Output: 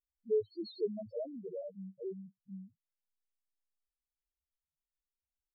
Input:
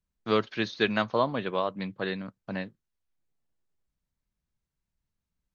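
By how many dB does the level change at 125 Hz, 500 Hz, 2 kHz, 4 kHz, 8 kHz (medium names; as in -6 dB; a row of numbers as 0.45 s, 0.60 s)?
-14.5 dB, -7.0 dB, under -40 dB, -20.5 dB, no reading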